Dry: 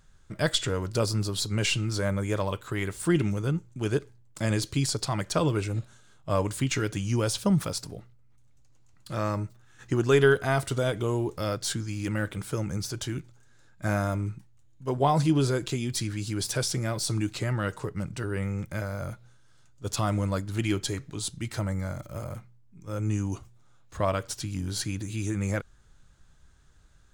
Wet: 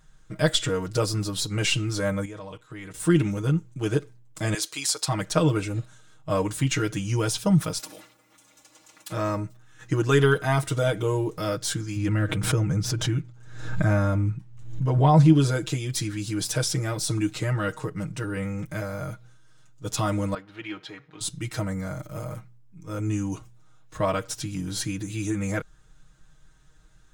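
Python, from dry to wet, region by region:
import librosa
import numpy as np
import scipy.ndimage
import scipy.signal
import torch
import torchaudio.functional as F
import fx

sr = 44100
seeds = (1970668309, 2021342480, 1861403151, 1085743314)

y = fx.chain(x, sr, fx.lowpass(hz=9200.0, slope=12),
    fx.level_steps(step_db=20), at=(2.25, 2.94))
y = fx.chain(y, sr, fx.highpass(hz=640.0, slope=12),
    fx.high_shelf(hz=4500.0, db=5.0), at=(4.54, 5.08))
y = fx.chain(y, sr, fx.highpass(hz=350.0, slope=12),
    fx.comb(ms=3.5, depth=0.9),
    fx.spectral_comp(ratio=2.0), at=(7.79, 9.12))
y = fx.chain(y, sr, fx.lowpass(hz=3600.0, slope=6),
    fx.peak_eq(hz=90.0, db=8.5, octaves=1.4),
    fx.pre_swell(db_per_s=64.0), at=(11.96, 15.33))
y = fx.chain(y, sr, fx.law_mismatch(coded='mu'),
    fx.highpass(hz=1300.0, slope=6),
    fx.air_absorb(metres=350.0), at=(20.34, 21.21))
y = fx.notch(y, sr, hz=4500.0, q=17.0)
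y = y + 0.85 * np.pad(y, (int(6.4 * sr / 1000.0), 0))[:len(y)]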